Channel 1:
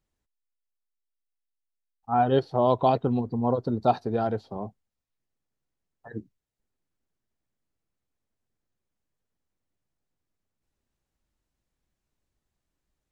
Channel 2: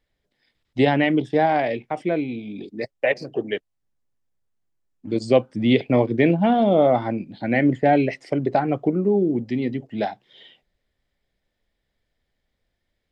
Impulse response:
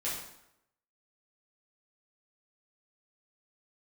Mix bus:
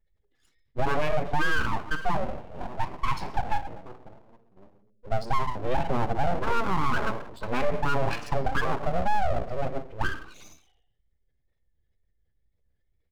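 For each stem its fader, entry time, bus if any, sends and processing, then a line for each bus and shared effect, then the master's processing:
-5.0 dB, 0.00 s, send -13.5 dB, Wiener smoothing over 41 samples; step gate ".xxx.xxxx." 69 bpm -12 dB; rippled Chebyshev low-pass 590 Hz, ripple 3 dB; auto duck -11 dB, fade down 1.70 s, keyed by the second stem
-1.5 dB, 0.00 s, send -10 dB, spectral contrast raised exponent 1.9; notch 660 Hz, Q 22; comb 2.4 ms, depth 78%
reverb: on, RT60 0.80 s, pre-delay 3 ms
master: vibrato 2.1 Hz 51 cents; full-wave rectifier; limiter -14.5 dBFS, peak gain reduction 11.5 dB

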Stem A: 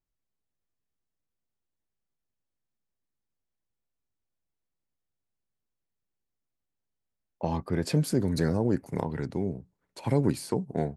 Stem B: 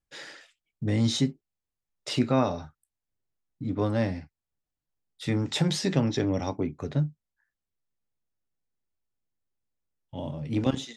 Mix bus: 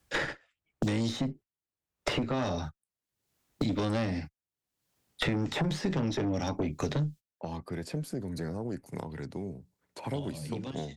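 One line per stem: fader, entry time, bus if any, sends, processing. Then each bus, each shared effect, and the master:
-13.0 dB, 0.00 s, no send, dry
+2.5 dB, 0.00 s, no send, gate -42 dBFS, range -34 dB; soft clip -20.5 dBFS, distortion -13 dB; three-band squash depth 100%; auto duck -18 dB, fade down 0.25 s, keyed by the first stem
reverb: off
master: HPF 51 Hz; tube stage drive 21 dB, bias 0.5; three-band squash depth 70%

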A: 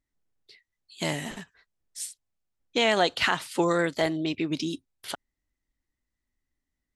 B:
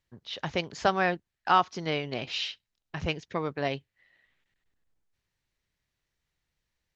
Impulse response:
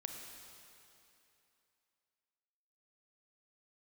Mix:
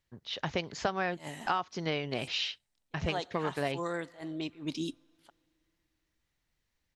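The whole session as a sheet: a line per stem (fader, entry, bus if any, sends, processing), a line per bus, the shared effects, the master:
-4.0 dB, 0.15 s, send -24 dB, bell 890 Hz +4.5 dB; attack slew limiter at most 210 dB/s; auto duck -8 dB, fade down 1.55 s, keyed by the second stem
0.0 dB, 0.00 s, no send, dry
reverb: on, RT60 2.9 s, pre-delay 28 ms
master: compressor 6:1, threshold -27 dBFS, peak gain reduction 11 dB

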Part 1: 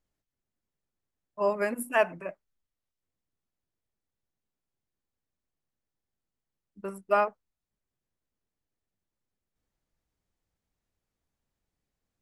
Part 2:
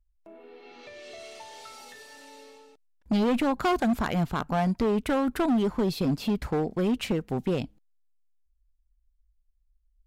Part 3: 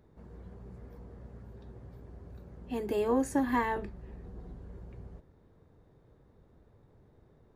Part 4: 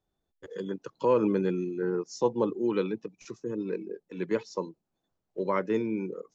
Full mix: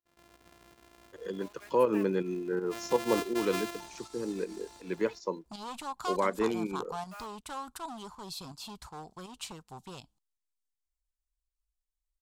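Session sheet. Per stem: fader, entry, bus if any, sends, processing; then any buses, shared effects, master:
-17.0 dB, 0.00 s, no send, Bessel high-pass 1400 Hz, order 2; bit-crush 6-bit
-9.0 dB, 2.40 s, no send, graphic EQ 250/500/1000/2000/4000/8000 Hz -10/-12/+10/-11/+5/+10 dB
-4.0 dB, 0.00 s, no send, sample sorter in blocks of 128 samples; gate with hold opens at -50 dBFS; low shelf 500 Hz -7 dB
0.0 dB, 0.70 s, no send, dry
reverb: off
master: low shelf 160 Hz -9.5 dB; pump 81 bpm, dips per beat 2, -8 dB, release 0.136 s

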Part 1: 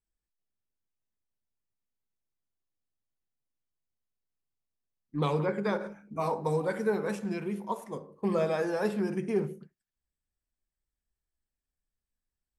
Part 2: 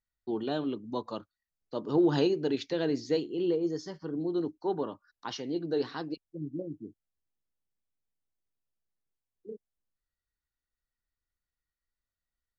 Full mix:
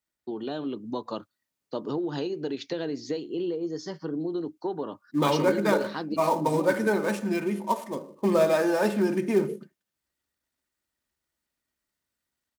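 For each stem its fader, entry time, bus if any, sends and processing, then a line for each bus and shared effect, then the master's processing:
+2.5 dB, 0.00 s, no send, switching dead time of 0.07 ms; comb 3.3 ms, depth 48%
+2.5 dB, 0.00 s, no send, compressor 8:1, threshold -33 dBFS, peak gain reduction 13 dB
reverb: off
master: AGC gain up to 3.5 dB; HPF 120 Hz

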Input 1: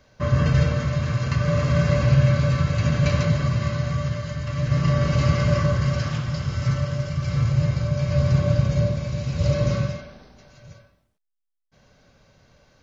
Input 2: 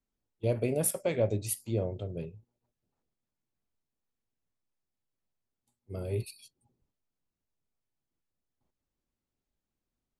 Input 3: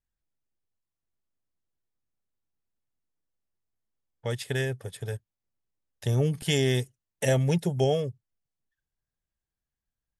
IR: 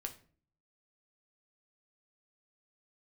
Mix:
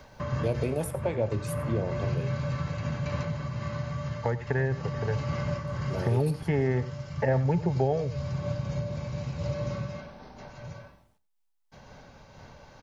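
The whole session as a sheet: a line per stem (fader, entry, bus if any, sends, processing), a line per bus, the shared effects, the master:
-12.5 dB, 0.00 s, no send, echo send -18.5 dB, noise-modulated level, depth 60%
-0.5 dB, 0.00 s, no send, echo send -18 dB, dry
+1.0 dB, 0.00 s, no send, echo send -16 dB, steep low-pass 2000 Hz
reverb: off
echo: echo 91 ms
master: bell 880 Hz +10 dB 0.32 oct; three-band squash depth 70%

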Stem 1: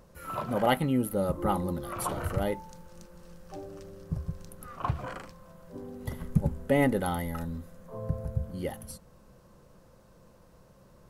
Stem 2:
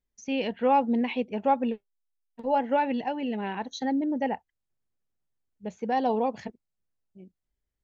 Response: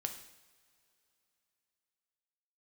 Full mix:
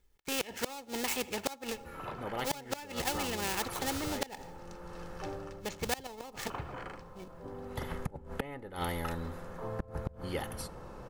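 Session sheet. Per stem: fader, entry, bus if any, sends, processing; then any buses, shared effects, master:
+2.0 dB, 1.70 s, send -20.5 dB, LPF 1200 Hz 6 dB/oct; auto duck -14 dB, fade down 0.30 s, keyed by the second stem
-3.0 dB, 0.00 s, send -16 dB, switching dead time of 0.12 ms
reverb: on, pre-delay 3 ms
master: comb 2.3 ms, depth 45%; flipped gate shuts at -18 dBFS, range -25 dB; spectral compressor 2:1

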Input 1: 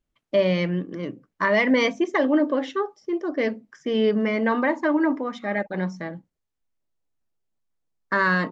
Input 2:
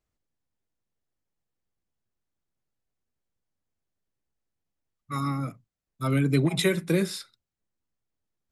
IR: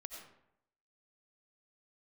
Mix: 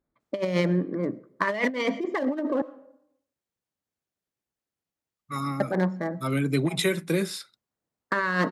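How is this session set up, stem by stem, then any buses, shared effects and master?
+1.0 dB, 0.00 s, muted 2.62–5.6, send -13.5 dB, Wiener smoothing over 15 samples
-2.5 dB, 0.20 s, no send, dry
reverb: on, RT60 0.75 s, pre-delay 50 ms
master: negative-ratio compressor -22 dBFS, ratio -0.5; HPF 170 Hz 6 dB/oct

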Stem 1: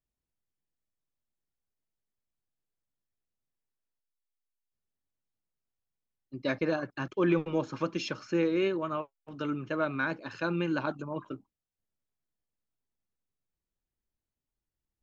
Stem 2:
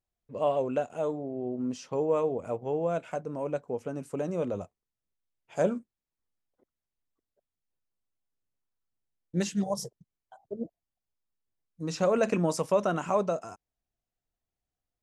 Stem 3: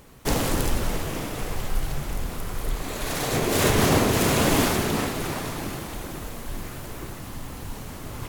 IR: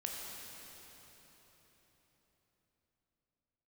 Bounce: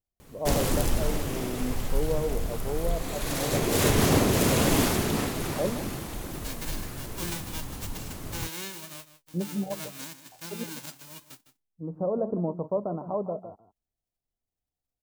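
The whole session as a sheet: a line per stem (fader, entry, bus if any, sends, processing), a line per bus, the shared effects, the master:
-8.5 dB, 0.00 s, no send, echo send -13.5 dB, spectral whitening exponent 0.1
-1.0 dB, 0.00 s, no send, echo send -13 dB, steep low-pass 1000 Hz
-1.0 dB, 0.20 s, no send, no echo send, dry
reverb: off
echo: echo 0.157 s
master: bell 1300 Hz -3.5 dB 3 oct

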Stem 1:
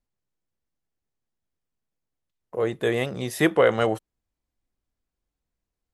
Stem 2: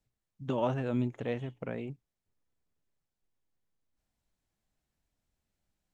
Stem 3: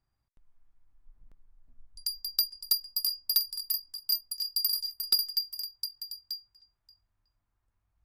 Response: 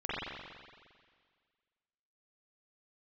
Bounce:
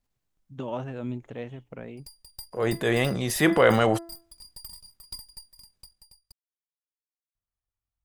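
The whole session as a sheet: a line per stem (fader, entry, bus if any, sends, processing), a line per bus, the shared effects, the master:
+3.0 dB, 0.00 s, no send, bell 450 Hz -4 dB; de-hum 336.2 Hz, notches 6; transient shaper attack -4 dB, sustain +6 dB
-2.5 dB, 0.10 s, no send, dry
-13.0 dB, 0.00 s, muted 6.32–7.35, no send, minimum comb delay 1.6 ms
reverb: off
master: dry

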